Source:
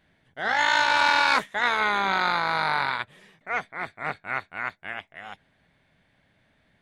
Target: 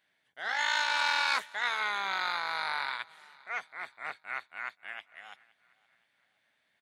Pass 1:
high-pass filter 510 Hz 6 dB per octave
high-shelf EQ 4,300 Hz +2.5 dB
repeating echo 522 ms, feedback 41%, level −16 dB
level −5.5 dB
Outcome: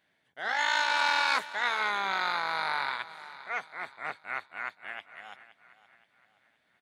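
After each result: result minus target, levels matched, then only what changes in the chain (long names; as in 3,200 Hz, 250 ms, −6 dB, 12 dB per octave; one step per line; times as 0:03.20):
echo-to-direct +8 dB; 500 Hz band +3.5 dB
change: repeating echo 522 ms, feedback 41%, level −24 dB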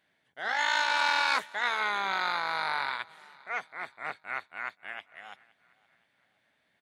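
500 Hz band +3.5 dB
change: high-pass filter 1,300 Hz 6 dB per octave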